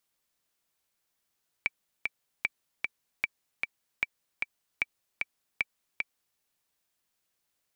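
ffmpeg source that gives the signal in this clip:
-f lavfi -i "aevalsrc='pow(10,(-13-3*gte(mod(t,2*60/152),60/152))/20)*sin(2*PI*2320*mod(t,60/152))*exp(-6.91*mod(t,60/152)/0.03)':d=4.73:s=44100"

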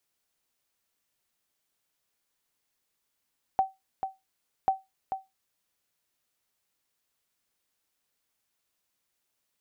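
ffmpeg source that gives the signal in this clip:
-f lavfi -i "aevalsrc='0.168*(sin(2*PI*768*mod(t,1.09))*exp(-6.91*mod(t,1.09)/0.2)+0.398*sin(2*PI*768*max(mod(t,1.09)-0.44,0))*exp(-6.91*max(mod(t,1.09)-0.44,0)/0.2))':d=2.18:s=44100"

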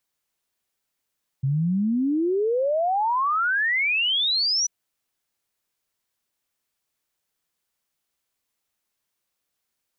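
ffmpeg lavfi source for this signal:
-f lavfi -i "aevalsrc='0.106*clip(min(t,3.24-t)/0.01,0,1)*sin(2*PI*130*3.24/log(6000/130)*(exp(log(6000/130)*t/3.24)-1))':d=3.24:s=44100"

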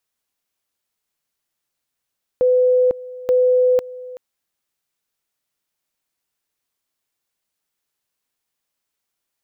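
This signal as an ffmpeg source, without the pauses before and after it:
-f lavfi -i "aevalsrc='pow(10,(-11.5-19*gte(mod(t,0.88),0.5))/20)*sin(2*PI*503*t)':d=1.76:s=44100"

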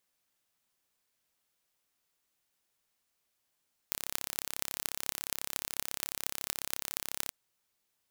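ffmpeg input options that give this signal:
-f lavfi -i "aevalsrc='0.708*eq(mod(n,1293),0)*(0.5+0.5*eq(mod(n,10344),0))':d=3.4:s=44100"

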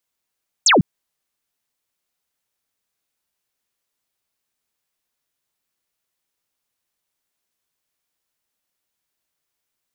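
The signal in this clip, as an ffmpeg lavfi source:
-f lavfi -i "aevalsrc='0.335*clip(t/0.002,0,1)*clip((0.15-t)/0.002,0,1)*sin(2*PI*8500*0.15/log(130/8500)*(exp(log(130/8500)*t/0.15)-1))':d=0.15:s=44100"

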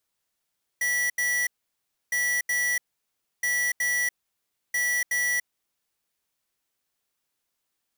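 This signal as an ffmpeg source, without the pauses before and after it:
-f lavfi -i "aevalsrc='0.0562*(2*lt(mod(1950*t,1),0.5)-1)*clip(min(mod(mod(t,1.31),0.37),0.29-mod(mod(t,1.31),0.37))/0.005,0,1)*lt(mod(t,1.31),0.74)':d=5.24:s=44100"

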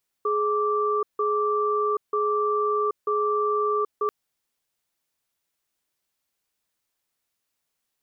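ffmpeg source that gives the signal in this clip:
-f lavfi -i "aevalsrc='0.0668*(sin(2*PI*420*t)+sin(2*PI*1170*t))*clip(min(mod(t,0.94),0.78-mod(t,0.94))/0.005,0,1)':d=3.84:s=44100"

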